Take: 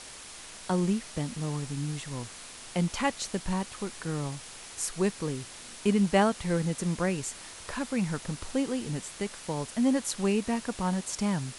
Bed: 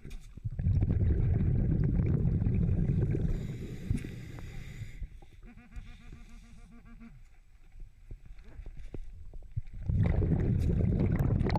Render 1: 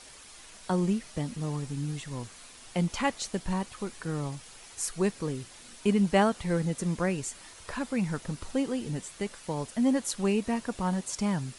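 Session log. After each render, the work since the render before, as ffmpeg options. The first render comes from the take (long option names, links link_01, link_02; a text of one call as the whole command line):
ffmpeg -i in.wav -af "afftdn=noise_reduction=7:noise_floor=-46" out.wav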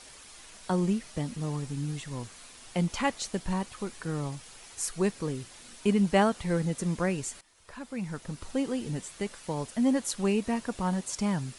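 ffmpeg -i in.wav -filter_complex "[0:a]asplit=2[link_01][link_02];[link_01]atrim=end=7.41,asetpts=PTS-STARTPTS,afade=type=out:start_time=7.406:duration=0.004:curve=hsin:silence=0.112202[link_03];[link_02]atrim=start=7.41,asetpts=PTS-STARTPTS,afade=type=in:duration=1.31:silence=0.112202[link_04];[link_03][link_04]concat=n=2:v=0:a=1" out.wav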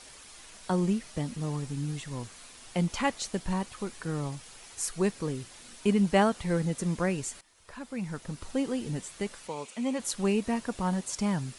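ffmpeg -i in.wav -filter_complex "[0:a]asplit=3[link_01][link_02][link_03];[link_01]afade=type=out:start_time=9.47:duration=0.02[link_04];[link_02]highpass=290,equalizer=frequency=310:width_type=q:width=4:gain=-6,equalizer=frequency=670:width_type=q:width=4:gain=-7,equalizer=frequency=1700:width_type=q:width=4:gain=-9,equalizer=frequency=2400:width_type=q:width=4:gain=9,equalizer=frequency=5100:width_type=q:width=4:gain=-5,lowpass=frequency=9000:width=0.5412,lowpass=frequency=9000:width=1.3066,afade=type=in:start_time=9.47:duration=0.02,afade=type=out:start_time=9.98:duration=0.02[link_05];[link_03]afade=type=in:start_time=9.98:duration=0.02[link_06];[link_04][link_05][link_06]amix=inputs=3:normalize=0" out.wav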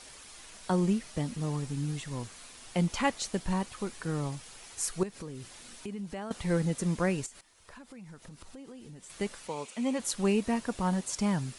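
ffmpeg -i in.wav -filter_complex "[0:a]asettb=1/sr,asplit=3[link_01][link_02][link_03];[link_01]atrim=end=5.034[link_04];[link_02]atrim=start=5.03:end=6.31,asetpts=PTS-STARTPTS,afade=type=in:duration=0.004:curve=qsin,afade=type=out:start_time=1.276:duration=0.004:curve=qsin,acompressor=threshold=-38dB:ratio=4:attack=3.2:release=140:knee=1:detection=peak[link_05];[link_03]atrim=start=6.306[link_06];[link_04][link_05]acrossfade=duration=0.004:curve1=hsin:curve2=qsin[link_07];[link_07][link_06]acrossfade=duration=0.004:curve1=qsin:curve2=hsin,asettb=1/sr,asplit=3[link_08][link_09][link_10];[link_08]atrim=end=7.264[link_11];[link_09]atrim=start=7.26:end=9.1,asetpts=PTS-STARTPTS,afade=type=in:duration=0.004:curve=qsin,afade=type=out:start_time=1.836:duration=0.004:curve=qsin,acompressor=threshold=-46dB:ratio=5:attack=3.2:release=140:knee=1:detection=peak[link_12];[link_10]atrim=start=9.096[link_13];[link_11][link_12]acrossfade=duration=0.004:curve1=hsin:curve2=qsin[link_14];[link_14][link_13]acrossfade=duration=0.004:curve1=qsin:curve2=hsin" out.wav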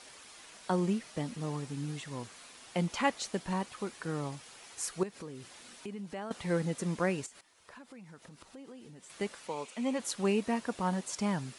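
ffmpeg -i in.wav -af "highpass=frequency=230:poles=1,highshelf=frequency=5500:gain=-6" out.wav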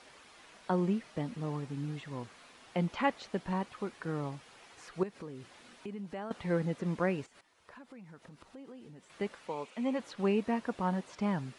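ffmpeg -i in.wav -filter_complex "[0:a]acrossover=split=4600[link_01][link_02];[link_02]acompressor=threshold=-54dB:ratio=4:attack=1:release=60[link_03];[link_01][link_03]amix=inputs=2:normalize=0,highshelf=frequency=4500:gain=-11.5" out.wav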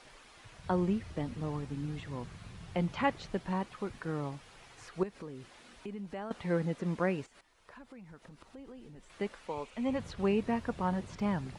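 ffmpeg -i in.wav -i bed.wav -filter_complex "[1:a]volume=-20.5dB[link_01];[0:a][link_01]amix=inputs=2:normalize=0" out.wav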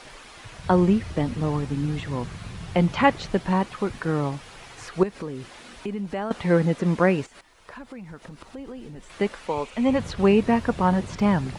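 ffmpeg -i in.wav -af "volume=11.5dB" out.wav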